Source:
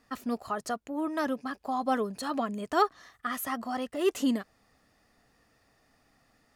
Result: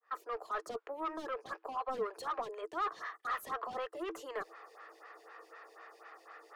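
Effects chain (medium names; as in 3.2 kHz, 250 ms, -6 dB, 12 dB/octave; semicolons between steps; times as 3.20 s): fade-in on the opening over 0.62 s; treble shelf 12 kHz +5.5 dB; reverse; compression 4:1, threshold -44 dBFS, peak gain reduction 20.5 dB; reverse; rippled Chebyshev high-pass 320 Hz, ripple 9 dB; overdrive pedal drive 24 dB, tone 1.6 kHz, clips at -32.5 dBFS; lamp-driven phase shifter 4 Hz; trim +7.5 dB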